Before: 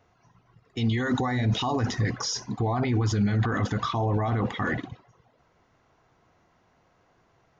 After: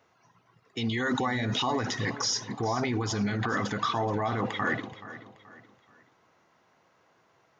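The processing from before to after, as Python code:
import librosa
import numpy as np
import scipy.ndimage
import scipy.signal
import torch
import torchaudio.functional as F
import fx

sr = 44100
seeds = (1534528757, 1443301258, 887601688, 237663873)

y = scipy.signal.sosfilt(scipy.signal.butter(2, 110.0, 'highpass', fs=sr, output='sos'), x)
y = fx.low_shelf(y, sr, hz=300.0, db=-8.0)
y = fx.notch(y, sr, hz=720.0, q=17.0)
y = fx.echo_feedback(y, sr, ms=428, feedback_pct=37, wet_db=-15.0)
y = F.gain(torch.from_numpy(y), 1.5).numpy()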